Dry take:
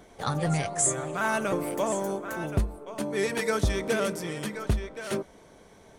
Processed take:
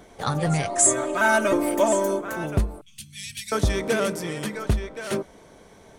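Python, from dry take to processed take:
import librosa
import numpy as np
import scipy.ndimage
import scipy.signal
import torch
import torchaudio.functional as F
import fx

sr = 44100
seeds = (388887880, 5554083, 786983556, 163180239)

y = fx.comb(x, sr, ms=3.2, depth=0.99, at=(0.69, 2.21))
y = fx.ellip_bandstop(y, sr, low_hz=120.0, high_hz=2900.0, order=3, stop_db=80, at=(2.81, 3.52))
y = y * 10.0 ** (3.5 / 20.0)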